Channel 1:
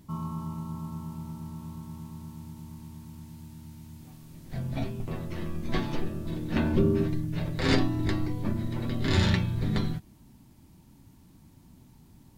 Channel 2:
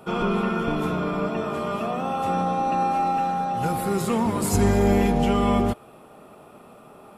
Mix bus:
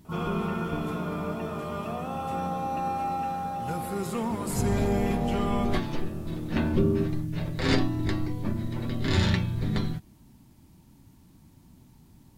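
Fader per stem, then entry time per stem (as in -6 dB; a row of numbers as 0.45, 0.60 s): 0.0, -7.0 dB; 0.00, 0.05 s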